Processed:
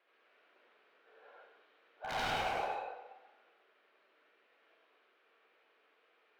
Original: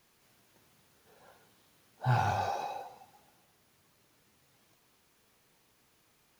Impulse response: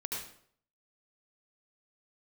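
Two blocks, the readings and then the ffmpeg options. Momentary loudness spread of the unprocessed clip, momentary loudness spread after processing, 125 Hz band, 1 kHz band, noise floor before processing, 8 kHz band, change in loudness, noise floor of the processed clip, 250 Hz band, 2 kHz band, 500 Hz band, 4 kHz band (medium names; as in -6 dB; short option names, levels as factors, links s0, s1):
15 LU, 17 LU, -20.5 dB, -4.5 dB, -69 dBFS, -2.0 dB, -5.0 dB, -72 dBFS, -7.0 dB, +1.0 dB, -1.0 dB, +5.5 dB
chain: -filter_complex "[0:a]highpass=f=390:w=0.5412,highpass=f=390:w=1.3066,equalizer=f=610:t=q:w=4:g=3,equalizer=f=930:t=q:w=4:g=-6,equalizer=f=1400:t=q:w=4:g=4,lowpass=f=3000:w=0.5412,lowpass=f=3000:w=1.3066,aeval=exprs='0.0266*(abs(mod(val(0)/0.0266+3,4)-2)-1)':c=same[s0];[1:a]atrim=start_sample=2205[s1];[s0][s1]afir=irnorm=-1:irlink=0"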